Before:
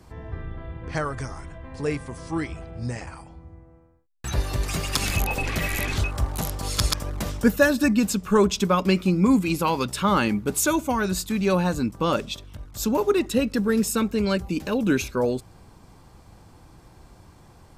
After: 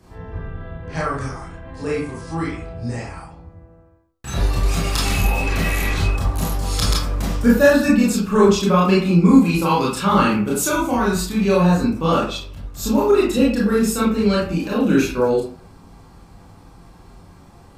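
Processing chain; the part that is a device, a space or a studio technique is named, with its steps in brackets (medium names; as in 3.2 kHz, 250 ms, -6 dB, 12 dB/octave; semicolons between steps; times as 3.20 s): bathroom (reverberation RT60 0.45 s, pre-delay 24 ms, DRR -6 dB); trim -2.5 dB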